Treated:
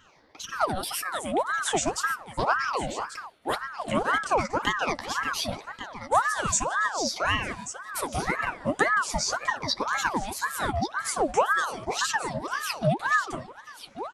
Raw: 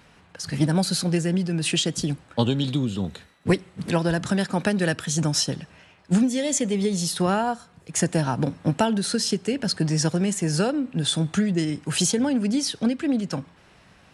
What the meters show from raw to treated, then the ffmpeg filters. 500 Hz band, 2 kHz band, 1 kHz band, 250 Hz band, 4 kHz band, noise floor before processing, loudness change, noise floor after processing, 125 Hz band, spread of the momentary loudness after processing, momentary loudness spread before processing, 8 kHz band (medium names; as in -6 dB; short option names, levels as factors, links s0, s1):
-3.0 dB, +6.5 dB, +6.0 dB, -13.0 dB, -5.0 dB, -55 dBFS, -3.5 dB, -50 dBFS, -12.5 dB, 11 LU, 6 LU, -4.0 dB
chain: -filter_complex "[0:a]afftfilt=real='re*pow(10,20/40*sin(2*PI*(0.57*log(max(b,1)*sr/1024/100)/log(2)-(-0.42)*(pts-256)/sr)))':imag='im*pow(10,20/40*sin(2*PI*(0.57*log(max(b,1)*sr/1024/100)/log(2)-(-0.42)*(pts-256)/sr)))':win_size=1024:overlap=0.75,flanger=delay=4.8:depth=8.1:regen=-14:speed=1.9:shape=sinusoidal,asplit=2[s0][s1];[s1]aecho=0:1:1137:0.251[s2];[s0][s2]amix=inputs=2:normalize=0,aeval=exprs='val(0)*sin(2*PI*940*n/s+940*0.6/1.9*sin(2*PI*1.9*n/s))':c=same,volume=0.75"